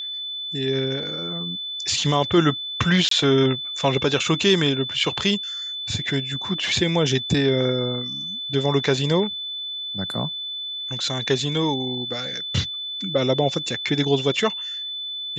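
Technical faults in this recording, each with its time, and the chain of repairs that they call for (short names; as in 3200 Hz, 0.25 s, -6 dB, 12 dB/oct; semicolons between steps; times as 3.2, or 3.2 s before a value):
tone 3500 Hz -28 dBFS
3.09–3.11 gap 23 ms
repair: notch 3500 Hz, Q 30; interpolate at 3.09, 23 ms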